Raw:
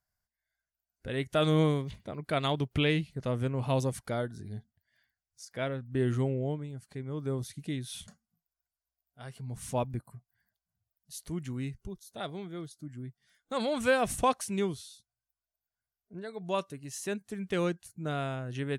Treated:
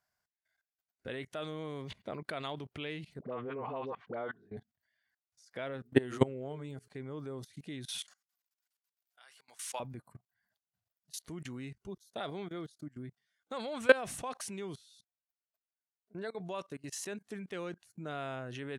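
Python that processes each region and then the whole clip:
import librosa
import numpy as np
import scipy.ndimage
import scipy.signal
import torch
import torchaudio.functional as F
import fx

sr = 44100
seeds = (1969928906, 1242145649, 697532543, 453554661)

y = fx.chain(x, sr, fx.cabinet(low_hz=110.0, low_slope=24, high_hz=2900.0, hz=(140.0, 430.0, 750.0, 1100.0), db=(-7, 8, 4, 7)),
    fx.dispersion(late='highs', ms=66.0, hz=640.0), at=(3.19, 4.57))
y = fx.chain(y, sr, fx.high_shelf(hz=6000.0, db=6.0),
    fx.hum_notches(base_hz=60, count=7),
    fx.transient(attack_db=8, sustain_db=3), at=(5.73, 6.88))
y = fx.chain(y, sr, fx.highpass(hz=1100.0, slope=12),
    fx.high_shelf(hz=2100.0, db=7.0), at=(7.98, 9.8))
y = fx.level_steps(y, sr, step_db=22)
y = fx.highpass(y, sr, hz=360.0, slope=6)
y = fx.high_shelf(y, sr, hz=6400.0, db=-9.5)
y = y * librosa.db_to_amplitude(8.0)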